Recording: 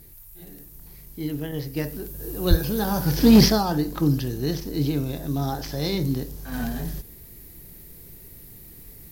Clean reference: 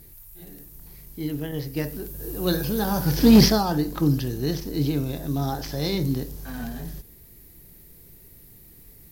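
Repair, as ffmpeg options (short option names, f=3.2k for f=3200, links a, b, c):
-filter_complex "[0:a]asplit=3[a][b][c];[a]afade=t=out:st=2.49:d=0.02[d];[b]highpass=f=140:w=0.5412,highpass=f=140:w=1.3066,afade=t=in:st=2.49:d=0.02,afade=t=out:st=2.61:d=0.02[e];[c]afade=t=in:st=2.61:d=0.02[f];[d][e][f]amix=inputs=3:normalize=0,asetnsamples=n=441:p=0,asendcmd='6.52 volume volume -4.5dB',volume=0dB"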